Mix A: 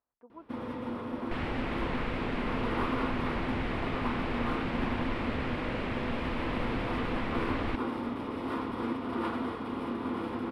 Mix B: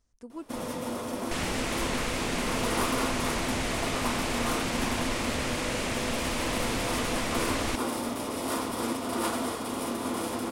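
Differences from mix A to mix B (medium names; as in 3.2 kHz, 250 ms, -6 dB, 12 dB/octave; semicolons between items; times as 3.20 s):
speech: remove band-pass filter 930 Hz, Q 1.4; first sound: add peaking EQ 630 Hz +8.5 dB 0.49 oct; master: remove distance through air 440 m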